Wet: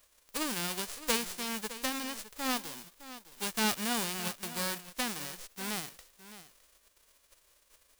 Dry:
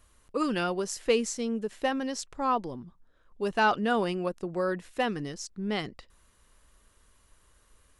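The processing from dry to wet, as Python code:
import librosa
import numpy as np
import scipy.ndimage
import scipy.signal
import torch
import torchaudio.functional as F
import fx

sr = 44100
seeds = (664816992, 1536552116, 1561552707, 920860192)

y = fx.envelope_flatten(x, sr, power=0.1)
y = y + 10.0 ** (-14.5 / 20.0) * np.pad(y, (int(612 * sr / 1000.0), 0))[:len(y)]
y = y * librosa.db_to_amplitude(-6.0)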